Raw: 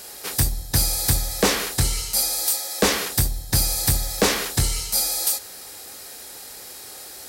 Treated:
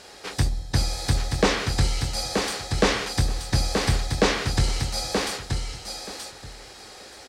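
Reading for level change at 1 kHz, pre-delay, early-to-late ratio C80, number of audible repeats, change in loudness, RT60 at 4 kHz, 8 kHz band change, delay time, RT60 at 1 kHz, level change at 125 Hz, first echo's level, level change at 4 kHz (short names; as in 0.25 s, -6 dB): +1.0 dB, none, none, 2, -4.0 dB, none, -10.0 dB, 0.928 s, none, +1.0 dB, -5.0 dB, -2.5 dB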